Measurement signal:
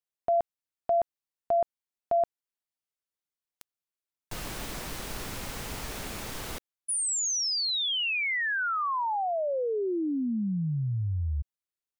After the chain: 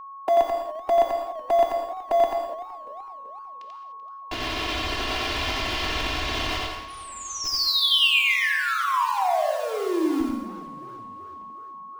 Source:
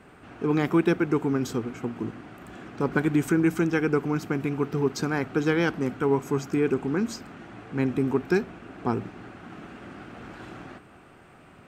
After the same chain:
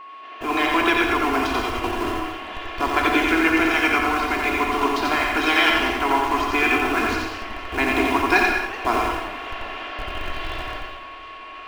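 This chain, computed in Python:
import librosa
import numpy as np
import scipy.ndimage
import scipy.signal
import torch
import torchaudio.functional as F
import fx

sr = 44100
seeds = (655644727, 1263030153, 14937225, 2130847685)

p1 = fx.spec_clip(x, sr, under_db=17)
p2 = fx.cabinet(p1, sr, low_hz=300.0, low_slope=24, high_hz=4700.0, hz=(410.0, 1400.0, 2900.0), db=(-4, -4, 5))
p3 = fx.schmitt(p2, sr, flips_db=-33.0)
p4 = p2 + (p3 * librosa.db_to_amplitude(-8.0))
p5 = fx.rider(p4, sr, range_db=3, speed_s=2.0)
p6 = p5 + 0.61 * np.pad(p5, (int(2.9 * sr / 1000.0), 0))[:len(p5)]
p7 = p6 + 10.0 ** (-3.0 / 20.0) * np.pad(p6, (int(88 * sr / 1000.0), 0))[:len(p6)]
p8 = fx.rev_gated(p7, sr, seeds[0], gate_ms=230, shape='flat', drr_db=3.0)
p9 = fx.dynamic_eq(p8, sr, hz=480.0, q=2.0, threshold_db=-38.0, ratio=4.0, max_db=-6)
p10 = p9 + 10.0 ** (-40.0 / 20.0) * np.sin(2.0 * np.pi * 1100.0 * np.arange(len(p9)) / sr)
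p11 = fx.echo_warbled(p10, sr, ms=379, feedback_pct=52, rate_hz=2.8, cents=177, wet_db=-18.0)
y = p11 * librosa.db_to_amplitude(2.5)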